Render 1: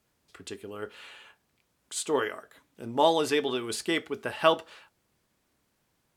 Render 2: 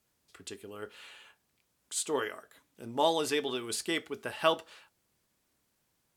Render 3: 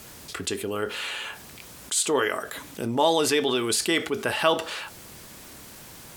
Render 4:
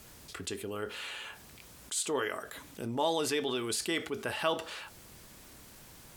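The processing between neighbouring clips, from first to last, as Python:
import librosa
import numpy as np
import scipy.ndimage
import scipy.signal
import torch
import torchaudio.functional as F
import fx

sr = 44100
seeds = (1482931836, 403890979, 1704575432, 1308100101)

y1 = fx.high_shelf(x, sr, hz=4100.0, db=6.5)
y1 = y1 * 10.0 ** (-5.0 / 20.0)
y2 = fx.env_flatten(y1, sr, amount_pct=50)
y2 = y2 * 10.0 ** (4.0 / 20.0)
y3 = fx.low_shelf(y2, sr, hz=65.0, db=9.0)
y3 = y3 * 10.0 ** (-9.0 / 20.0)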